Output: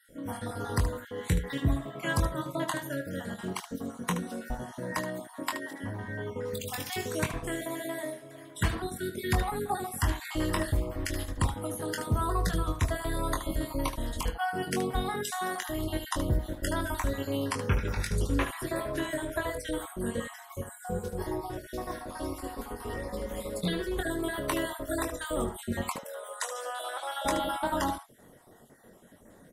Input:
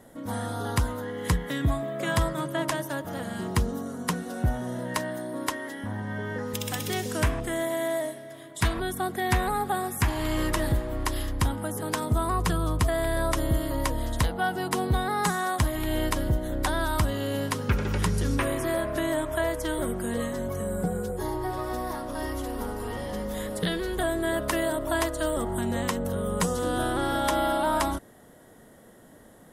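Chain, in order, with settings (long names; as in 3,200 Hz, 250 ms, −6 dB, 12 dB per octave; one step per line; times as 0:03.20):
time-frequency cells dropped at random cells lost 38%
0:25.96–0:27.25: elliptic high-pass filter 590 Hz, stop band 80 dB
ambience of single reflections 22 ms −6 dB, 75 ms −10 dB
level −3 dB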